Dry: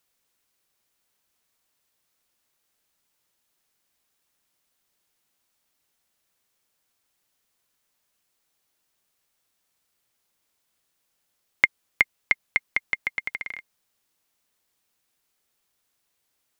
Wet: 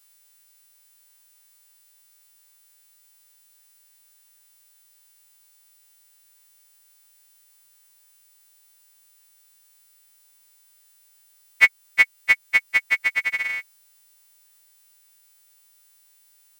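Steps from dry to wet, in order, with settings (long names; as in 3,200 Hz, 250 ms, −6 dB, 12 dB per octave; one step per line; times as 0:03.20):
every partial snapped to a pitch grid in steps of 2 semitones
in parallel at −2 dB: downward compressor, threshold −24 dBFS, peak gain reduction 13 dB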